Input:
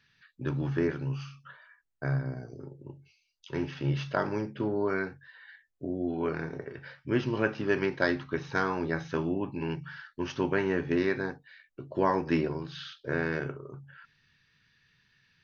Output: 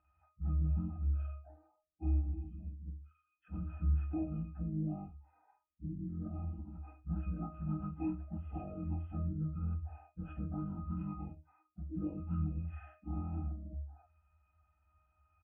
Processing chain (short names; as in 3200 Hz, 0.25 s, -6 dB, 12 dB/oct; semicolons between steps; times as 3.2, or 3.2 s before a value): pitch shift by moving bins -11.5 st; comb 3.9 ms, depth 73%; compressor 2:1, threshold -37 dBFS, peak gain reduction 10 dB; octave resonator D#, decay 0.28 s; gain +10.5 dB